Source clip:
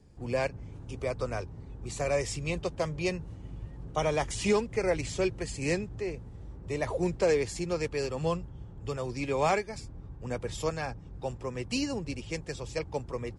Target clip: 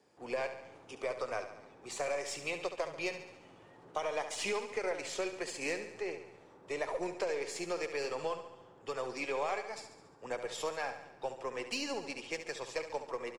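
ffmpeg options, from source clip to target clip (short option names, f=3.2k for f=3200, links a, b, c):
-af "highpass=530,highshelf=f=4.5k:g=-7,acompressor=threshold=-35dB:ratio=6,aeval=exprs='0.0501*(cos(1*acos(clip(val(0)/0.0501,-1,1)))-cos(1*PI/2))+0.00158*(cos(6*acos(clip(val(0)/0.0501,-1,1)))-cos(6*PI/2))':c=same,aecho=1:1:70|140|210|280|350|420|490:0.316|0.183|0.106|0.0617|0.0358|0.0208|0.012,volume=2.5dB"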